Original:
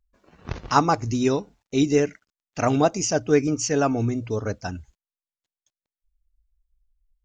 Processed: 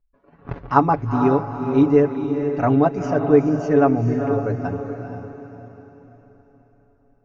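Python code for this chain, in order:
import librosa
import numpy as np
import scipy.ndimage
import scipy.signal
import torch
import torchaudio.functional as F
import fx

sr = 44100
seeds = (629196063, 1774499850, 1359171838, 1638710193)

p1 = scipy.signal.sosfilt(scipy.signal.butter(2, 1500.0, 'lowpass', fs=sr, output='sos'), x)
p2 = fx.hum_notches(p1, sr, base_hz=50, count=3)
p3 = p2 + 0.65 * np.pad(p2, (int(7.1 * sr / 1000.0), 0))[:len(p2)]
p4 = p3 + fx.echo_diffused(p3, sr, ms=456, feedback_pct=43, wet_db=-7.0, dry=0)
y = p4 * 10.0 ** (1.0 / 20.0)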